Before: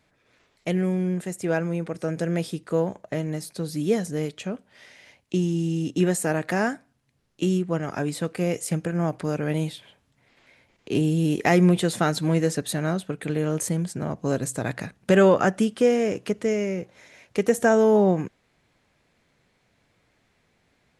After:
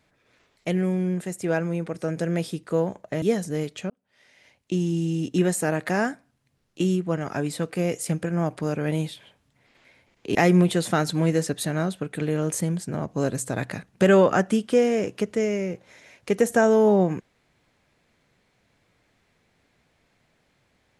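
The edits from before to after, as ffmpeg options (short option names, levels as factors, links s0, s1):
-filter_complex "[0:a]asplit=4[s0][s1][s2][s3];[s0]atrim=end=3.222[s4];[s1]atrim=start=3.838:end=4.52,asetpts=PTS-STARTPTS,afade=t=out:st=0.678:d=0.004:c=hsin[s5];[s2]atrim=start=4.52:end=10.972,asetpts=PTS-STARTPTS,afade=t=in:d=0.99[s6];[s3]atrim=start=11.428[s7];[s5][s6]concat=n=2:v=0:a=1[s8];[s4][s8]acrossfade=d=0.004:c1=hsin:c2=hsin[s9];[s9][s7]acrossfade=d=0.004:c1=hsin:c2=hsin"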